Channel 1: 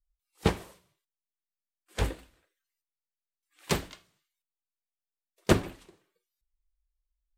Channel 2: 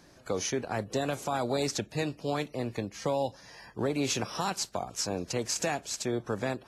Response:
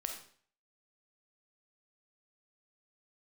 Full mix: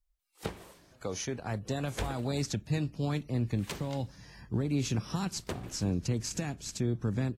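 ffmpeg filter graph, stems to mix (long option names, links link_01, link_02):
-filter_complex "[0:a]acompressor=threshold=-29dB:ratio=5,volume=2dB[link_01];[1:a]asubboost=boost=8:cutoff=220,adelay=750,volume=-4.5dB[link_02];[link_01][link_02]amix=inputs=2:normalize=0,alimiter=limit=-21dB:level=0:latency=1:release=367"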